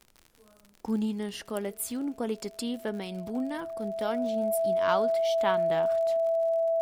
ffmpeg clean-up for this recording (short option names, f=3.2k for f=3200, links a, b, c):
-af "adeclick=t=4,bandreject=f=660:w=30,agate=range=-21dB:threshold=-50dB"